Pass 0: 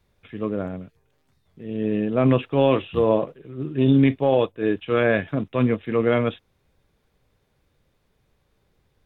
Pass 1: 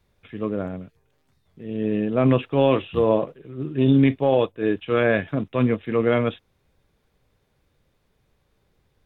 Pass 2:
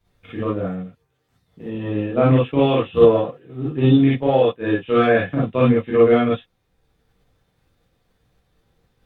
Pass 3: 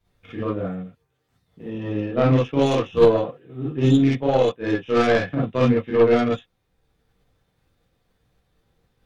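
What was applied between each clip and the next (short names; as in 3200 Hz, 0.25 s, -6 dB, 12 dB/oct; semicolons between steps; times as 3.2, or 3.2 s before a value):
nothing audible
transient shaper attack +8 dB, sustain -3 dB; non-linear reverb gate 80 ms rising, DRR -7.5 dB; gain -6.5 dB
tracing distortion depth 0.13 ms; gain -2.5 dB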